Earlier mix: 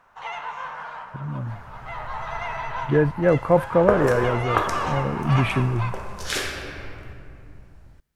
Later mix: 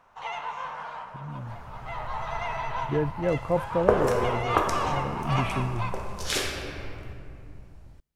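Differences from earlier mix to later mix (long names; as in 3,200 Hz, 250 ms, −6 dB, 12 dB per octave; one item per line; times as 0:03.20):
speech −7.5 dB
master: add parametric band 1,600 Hz −5.5 dB 0.72 octaves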